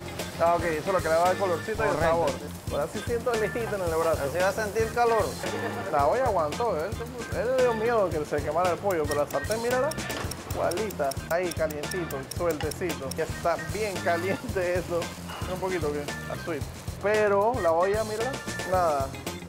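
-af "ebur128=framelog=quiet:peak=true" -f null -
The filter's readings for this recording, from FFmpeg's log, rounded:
Integrated loudness:
  I:         -27.4 LUFS
  Threshold: -37.3 LUFS
Loudness range:
  LRA:         3.2 LU
  Threshold: -47.6 LUFS
  LRA low:   -29.5 LUFS
  LRA high:  -26.3 LUFS
True peak:
  Peak:      -10.4 dBFS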